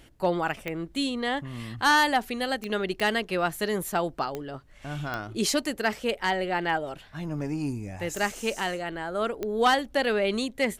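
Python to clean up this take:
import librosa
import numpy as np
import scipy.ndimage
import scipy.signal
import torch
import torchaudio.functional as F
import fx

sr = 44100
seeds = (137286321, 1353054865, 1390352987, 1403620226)

y = fx.fix_declick_ar(x, sr, threshold=10.0)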